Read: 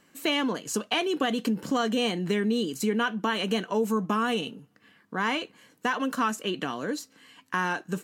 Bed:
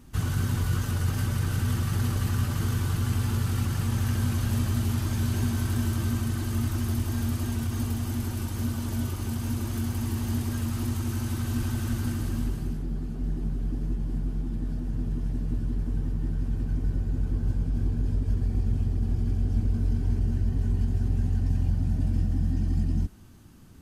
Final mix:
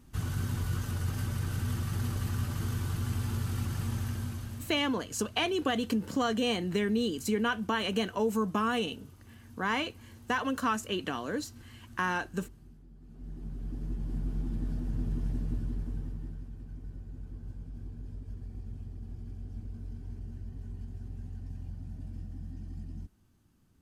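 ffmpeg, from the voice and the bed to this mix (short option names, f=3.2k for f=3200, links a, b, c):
-filter_complex "[0:a]adelay=4450,volume=-3dB[a];[1:a]volume=14dB,afade=t=out:st=3.88:d=0.9:silence=0.141254,afade=t=in:st=12.98:d=1.46:silence=0.1,afade=t=out:st=15.3:d=1.2:silence=0.223872[b];[a][b]amix=inputs=2:normalize=0"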